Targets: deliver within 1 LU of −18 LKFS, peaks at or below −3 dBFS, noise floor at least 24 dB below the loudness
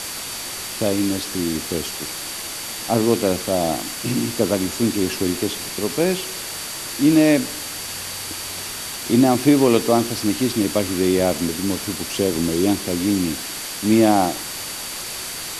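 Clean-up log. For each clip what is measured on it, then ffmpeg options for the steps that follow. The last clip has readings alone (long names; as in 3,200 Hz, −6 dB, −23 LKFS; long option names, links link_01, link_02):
interfering tone 4,600 Hz; level of the tone −37 dBFS; background noise floor −30 dBFS; target noise floor −45 dBFS; integrated loudness −21.0 LKFS; sample peak −2.5 dBFS; target loudness −18.0 LKFS
→ -af "bandreject=frequency=4600:width=30"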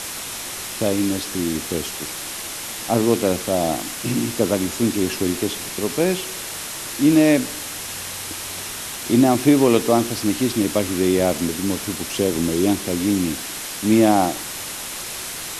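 interfering tone none found; background noise floor −31 dBFS; target noise floor −45 dBFS
→ -af "afftdn=noise_reduction=14:noise_floor=-31"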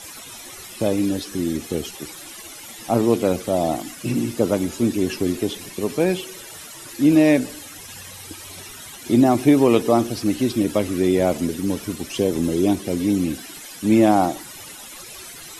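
background noise floor −39 dBFS; target noise floor −45 dBFS
→ -af "afftdn=noise_reduction=6:noise_floor=-39"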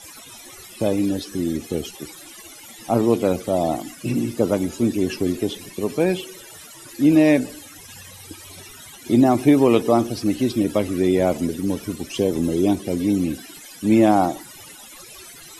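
background noise floor −42 dBFS; target noise floor −45 dBFS
→ -af "afftdn=noise_reduction=6:noise_floor=-42"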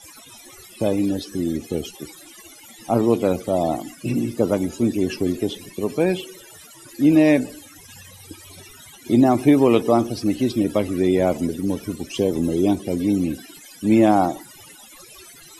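background noise floor −45 dBFS; integrated loudness −20.5 LKFS; sample peak −3.0 dBFS; target loudness −18.0 LKFS
→ -af "volume=2.5dB,alimiter=limit=-3dB:level=0:latency=1"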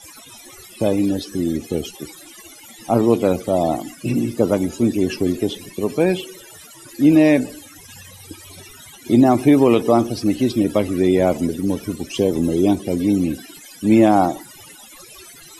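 integrated loudness −18.5 LKFS; sample peak −3.0 dBFS; background noise floor −43 dBFS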